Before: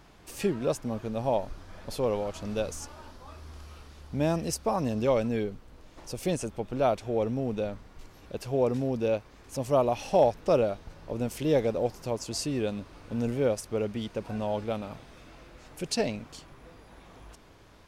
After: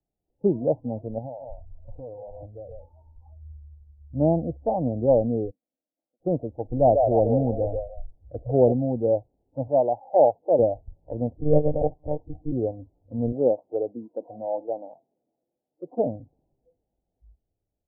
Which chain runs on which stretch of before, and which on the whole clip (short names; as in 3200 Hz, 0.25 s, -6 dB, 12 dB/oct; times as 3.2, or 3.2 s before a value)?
1.18–3.62 echo 0.141 s -9 dB + compressor 16:1, threshold -33 dBFS
5.5–6.2 ladder band-pass 450 Hz, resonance 25% + fixed phaser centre 400 Hz, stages 6
6.7–8.72 low shelf 150 Hz +6 dB + delay with a stepping band-pass 0.147 s, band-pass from 570 Hz, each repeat 0.7 oct, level -2 dB
9.67–10.59 HPF 60 Hz + tilt +3 dB/oct
11.33–12.52 bell 87 Hz -5.5 dB 0.71 oct + monotone LPC vocoder at 8 kHz 150 Hz
13.32–15.98 CVSD 32 kbps + HPF 210 Hz
whole clip: spectral noise reduction 19 dB; steep low-pass 820 Hz 72 dB/oct; three-band expander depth 40%; gain +5 dB